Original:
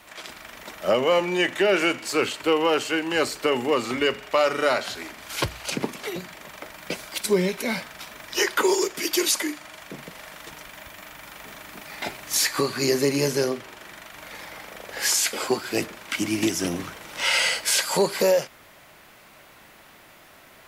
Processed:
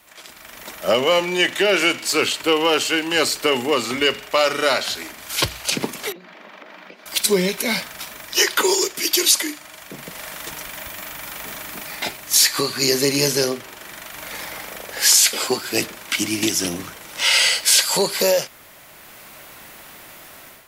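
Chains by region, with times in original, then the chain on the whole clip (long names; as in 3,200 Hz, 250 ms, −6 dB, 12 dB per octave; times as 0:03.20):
0:06.12–0:07.06: downward compressor 16 to 1, threshold −39 dBFS + linear-phase brick-wall high-pass 170 Hz + high-frequency loss of the air 270 metres
whole clip: dynamic equaliser 3,800 Hz, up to +6 dB, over −37 dBFS, Q 0.93; automatic gain control; high-shelf EQ 6,500 Hz +9.5 dB; level −5 dB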